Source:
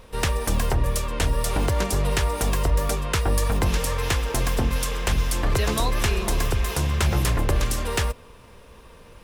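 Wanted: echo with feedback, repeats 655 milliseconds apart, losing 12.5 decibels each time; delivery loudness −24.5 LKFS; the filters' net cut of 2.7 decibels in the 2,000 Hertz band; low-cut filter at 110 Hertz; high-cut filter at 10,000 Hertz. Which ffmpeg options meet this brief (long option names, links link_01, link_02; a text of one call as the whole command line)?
ffmpeg -i in.wav -af "highpass=110,lowpass=10000,equalizer=frequency=2000:width_type=o:gain=-3.5,aecho=1:1:655|1310|1965:0.237|0.0569|0.0137,volume=3dB" out.wav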